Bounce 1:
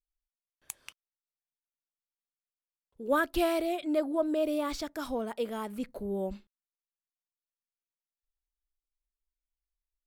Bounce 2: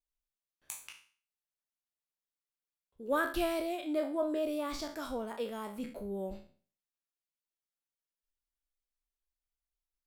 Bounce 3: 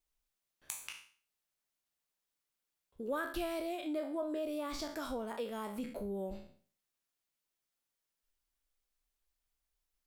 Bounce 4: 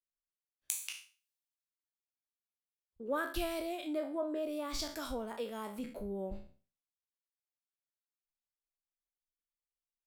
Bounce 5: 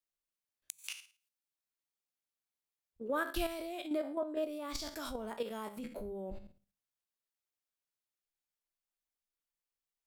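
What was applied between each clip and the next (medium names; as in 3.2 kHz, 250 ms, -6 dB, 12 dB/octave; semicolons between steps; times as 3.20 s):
spectral sustain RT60 0.42 s; trim -5 dB
compression 2.5:1, threshold -46 dBFS, peak gain reduction 13 dB; trim +6 dB
three bands expanded up and down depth 70%
inverted gate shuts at -20 dBFS, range -27 dB; hum notches 50/100/150/200 Hz; level held to a coarse grid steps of 9 dB; trim +3.5 dB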